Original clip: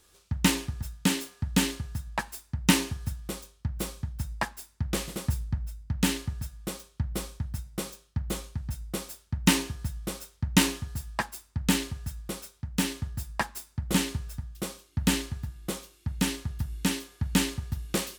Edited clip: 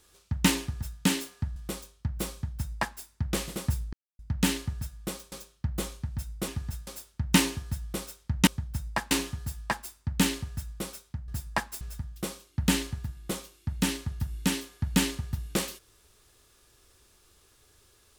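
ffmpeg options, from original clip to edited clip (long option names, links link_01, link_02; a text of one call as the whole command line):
ffmpeg -i in.wav -filter_complex "[0:a]asplit=11[link_01][link_02][link_03][link_04][link_05][link_06][link_07][link_08][link_09][link_10][link_11];[link_01]atrim=end=1.562[link_12];[link_02]atrim=start=3.158:end=5.53,asetpts=PTS-STARTPTS,afade=type=out:start_time=2.368:duration=0.004:curve=hsin[link_13];[link_03]atrim=start=5.53:end=5.79,asetpts=PTS-STARTPTS,volume=0[link_14];[link_04]atrim=start=5.79:end=6.922,asetpts=PTS-STARTPTS,afade=type=in:duration=0.004:curve=hsin[link_15];[link_05]atrim=start=7.838:end=9.002[link_16];[link_06]atrim=start=0.598:end=0.992[link_17];[link_07]atrim=start=8.998:end=10.602[link_18];[link_08]atrim=start=3.918:end=4.562[link_19];[link_09]atrim=start=10.598:end=12.772[link_20];[link_10]atrim=start=13.108:end=13.642[link_21];[link_11]atrim=start=14.198[link_22];[link_13][link_14][link_15]concat=n=3:v=0:a=1[link_23];[link_12][link_23]acrossfade=duration=0.004:curve1=hsin:curve2=hsin[link_24];[link_24][link_16]acrossfade=duration=0.004:curve1=hsin:curve2=hsin[link_25];[link_25][link_17]acrossfade=duration=0.004:curve1=hsin:curve2=hsin[link_26];[link_26][link_18]acrossfade=duration=0.004:curve1=hsin:curve2=hsin[link_27];[link_27][link_19]acrossfade=duration=0.004:curve1=hsin:curve2=hsin[link_28];[link_28][link_20]acrossfade=duration=0.004:curve1=hsin:curve2=hsin[link_29];[link_29][link_21]acrossfade=duration=0.004:curve1=hsin:curve2=hsin[link_30];[link_30][link_22]acrossfade=duration=0.004:curve1=hsin:curve2=hsin" out.wav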